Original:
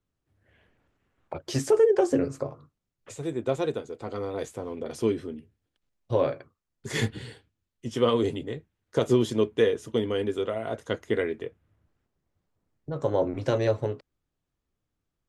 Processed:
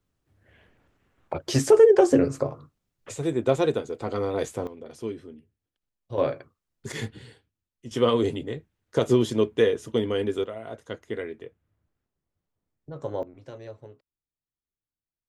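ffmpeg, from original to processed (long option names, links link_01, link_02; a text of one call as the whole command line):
ffmpeg -i in.wav -af "asetnsamples=nb_out_samples=441:pad=0,asendcmd='4.67 volume volume -7.5dB;6.18 volume volume 1dB;6.92 volume volume -6dB;7.91 volume volume 1.5dB;10.44 volume volume -6dB;13.23 volume volume -17dB',volume=5dB" out.wav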